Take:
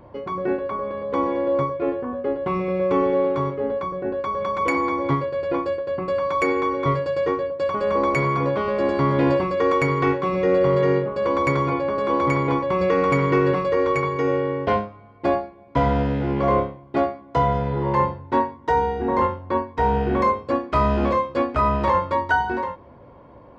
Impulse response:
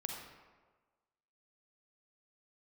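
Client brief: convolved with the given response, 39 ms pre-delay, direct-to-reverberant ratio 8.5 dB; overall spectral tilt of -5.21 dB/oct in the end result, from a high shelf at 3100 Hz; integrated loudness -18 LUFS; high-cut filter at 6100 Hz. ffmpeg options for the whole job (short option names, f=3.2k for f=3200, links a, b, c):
-filter_complex "[0:a]lowpass=6.1k,highshelf=f=3.1k:g=7,asplit=2[a][b];[1:a]atrim=start_sample=2205,adelay=39[c];[b][c]afir=irnorm=-1:irlink=0,volume=-8.5dB[d];[a][d]amix=inputs=2:normalize=0,volume=4dB"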